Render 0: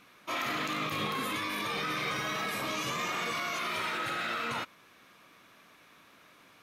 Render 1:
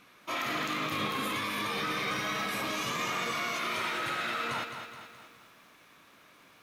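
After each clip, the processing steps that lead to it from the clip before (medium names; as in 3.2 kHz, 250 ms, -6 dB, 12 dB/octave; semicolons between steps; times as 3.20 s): bit-crushed delay 212 ms, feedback 55%, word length 10-bit, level -8 dB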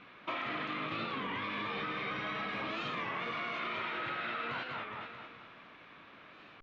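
low-pass 3.4 kHz 24 dB/octave; compression 6:1, threshold -39 dBFS, peak gain reduction 10.5 dB; warped record 33 1/3 rpm, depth 160 cents; trim +4 dB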